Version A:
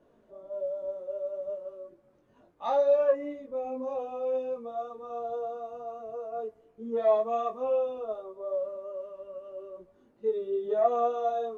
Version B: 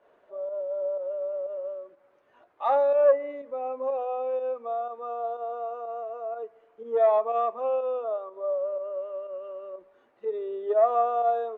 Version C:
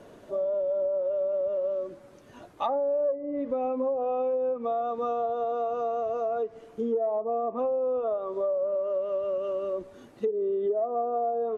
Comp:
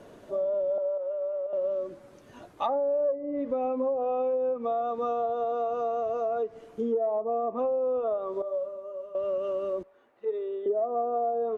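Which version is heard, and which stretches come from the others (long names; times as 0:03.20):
C
0:00.78–0:01.53: punch in from B
0:08.42–0:09.15: punch in from A
0:09.83–0:10.66: punch in from B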